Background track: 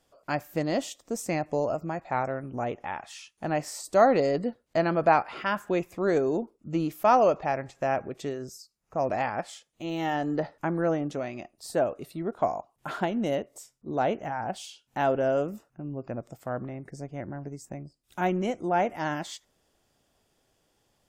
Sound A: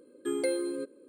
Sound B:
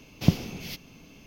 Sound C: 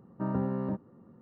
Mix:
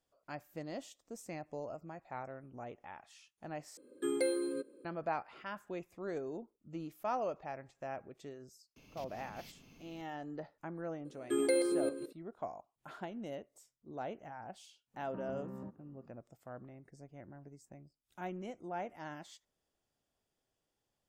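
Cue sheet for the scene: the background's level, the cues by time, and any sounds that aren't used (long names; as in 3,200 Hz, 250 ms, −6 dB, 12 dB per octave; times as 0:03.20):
background track −15.5 dB
0:03.77: overwrite with A −3 dB
0:08.76: mix in B −9.5 dB + downward compressor 5 to 1, threshold −41 dBFS
0:11.05: mix in A −1 dB + delay that plays each chunk backwards 168 ms, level −7.5 dB
0:14.94: mix in C −8.5 dB + downward compressor, threshold −33 dBFS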